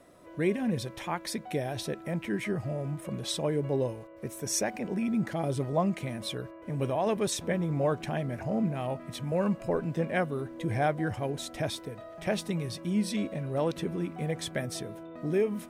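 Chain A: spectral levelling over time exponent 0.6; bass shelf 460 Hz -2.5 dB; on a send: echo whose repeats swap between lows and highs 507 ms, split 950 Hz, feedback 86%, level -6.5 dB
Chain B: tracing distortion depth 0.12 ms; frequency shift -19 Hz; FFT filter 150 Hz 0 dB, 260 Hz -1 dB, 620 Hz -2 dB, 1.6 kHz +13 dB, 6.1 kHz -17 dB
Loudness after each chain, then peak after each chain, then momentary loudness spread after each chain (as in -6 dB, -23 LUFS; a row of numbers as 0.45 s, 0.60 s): -27.5 LUFS, -31.0 LUFS; -11.5 dBFS, -7.5 dBFS; 4 LU, 9 LU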